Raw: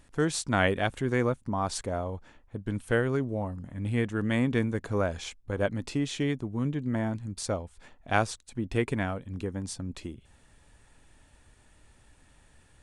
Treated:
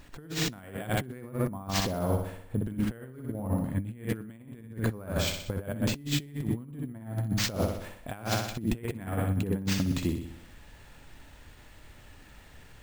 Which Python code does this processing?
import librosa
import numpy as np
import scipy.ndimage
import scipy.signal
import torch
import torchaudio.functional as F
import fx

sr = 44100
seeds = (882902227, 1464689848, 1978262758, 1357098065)

p1 = fx.dynamic_eq(x, sr, hz=160.0, q=0.84, threshold_db=-42.0, ratio=4.0, max_db=8)
p2 = np.repeat(p1[::4], 4)[:len(p1)]
p3 = p2 + fx.echo_feedback(p2, sr, ms=62, feedback_pct=54, wet_db=-7, dry=0)
y = fx.over_compress(p3, sr, threshold_db=-31.0, ratio=-0.5)